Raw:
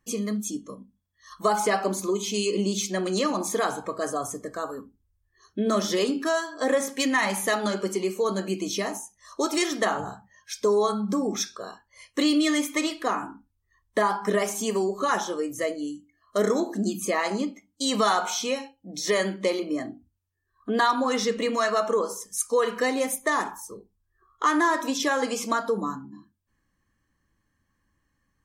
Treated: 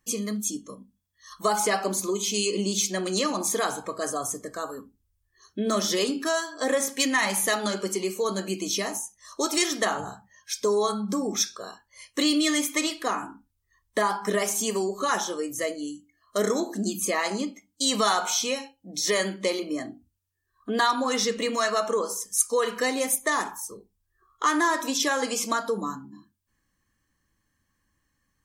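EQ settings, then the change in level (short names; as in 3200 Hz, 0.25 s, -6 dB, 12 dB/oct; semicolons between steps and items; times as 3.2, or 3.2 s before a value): high shelf 3000 Hz +8 dB; -2.0 dB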